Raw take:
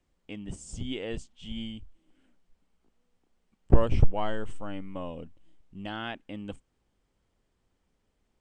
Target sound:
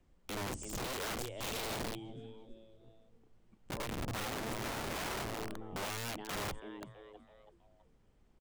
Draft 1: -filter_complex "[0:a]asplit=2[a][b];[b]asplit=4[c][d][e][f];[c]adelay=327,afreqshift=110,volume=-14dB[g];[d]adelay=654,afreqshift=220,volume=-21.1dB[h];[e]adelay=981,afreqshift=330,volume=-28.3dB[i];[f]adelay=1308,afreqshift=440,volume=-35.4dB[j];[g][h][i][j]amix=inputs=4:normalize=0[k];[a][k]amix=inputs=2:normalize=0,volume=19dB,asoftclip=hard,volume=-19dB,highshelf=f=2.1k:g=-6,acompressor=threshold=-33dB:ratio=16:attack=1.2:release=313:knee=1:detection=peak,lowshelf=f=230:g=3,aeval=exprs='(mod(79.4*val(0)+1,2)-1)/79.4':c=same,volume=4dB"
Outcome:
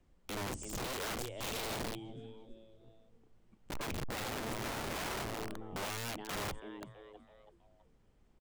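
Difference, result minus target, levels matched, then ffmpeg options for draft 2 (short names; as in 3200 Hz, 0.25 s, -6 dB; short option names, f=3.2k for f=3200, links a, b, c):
overloaded stage: distortion +23 dB
-filter_complex "[0:a]asplit=2[a][b];[b]asplit=4[c][d][e][f];[c]adelay=327,afreqshift=110,volume=-14dB[g];[d]adelay=654,afreqshift=220,volume=-21.1dB[h];[e]adelay=981,afreqshift=330,volume=-28.3dB[i];[f]adelay=1308,afreqshift=440,volume=-35.4dB[j];[g][h][i][j]amix=inputs=4:normalize=0[k];[a][k]amix=inputs=2:normalize=0,volume=7.5dB,asoftclip=hard,volume=-7.5dB,highshelf=f=2.1k:g=-6,acompressor=threshold=-33dB:ratio=16:attack=1.2:release=313:knee=1:detection=peak,lowshelf=f=230:g=3,aeval=exprs='(mod(79.4*val(0)+1,2)-1)/79.4':c=same,volume=4dB"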